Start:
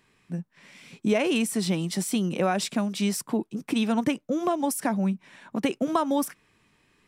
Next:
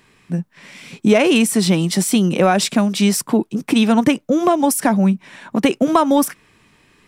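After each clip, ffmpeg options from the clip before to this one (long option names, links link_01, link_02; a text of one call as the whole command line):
ffmpeg -i in.wav -af "acontrast=86,volume=3.5dB" out.wav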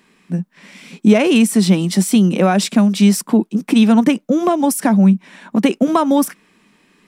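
ffmpeg -i in.wav -af "lowshelf=frequency=150:width_type=q:width=3:gain=-8,volume=-1.5dB" out.wav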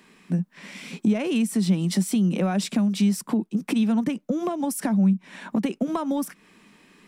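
ffmpeg -i in.wav -filter_complex "[0:a]acrossover=split=140[link_01][link_02];[link_02]acompressor=threshold=-25dB:ratio=6[link_03];[link_01][link_03]amix=inputs=2:normalize=0" out.wav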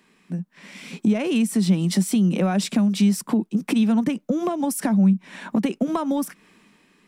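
ffmpeg -i in.wav -af "dynaudnorm=framelen=230:gausssize=7:maxgain=8dB,volume=-5dB" out.wav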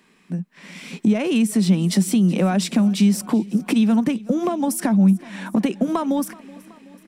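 ffmpeg -i in.wav -af "aecho=1:1:376|752|1128|1504|1880:0.0841|0.0505|0.0303|0.0182|0.0109,volume=2dB" out.wav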